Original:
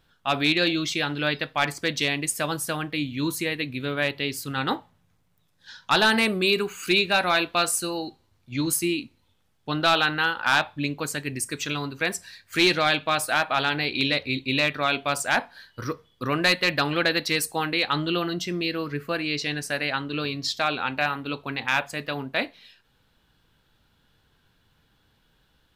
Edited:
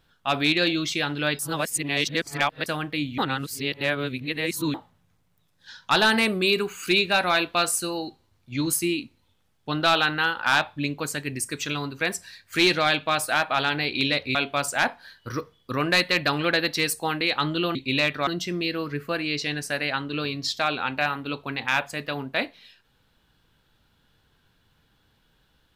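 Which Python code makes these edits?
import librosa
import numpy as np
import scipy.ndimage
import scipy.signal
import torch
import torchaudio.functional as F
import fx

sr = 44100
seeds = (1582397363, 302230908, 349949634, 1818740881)

y = fx.edit(x, sr, fx.reverse_span(start_s=1.39, length_s=1.27),
    fx.reverse_span(start_s=3.18, length_s=1.56),
    fx.move(start_s=14.35, length_s=0.52, to_s=18.27), tone=tone)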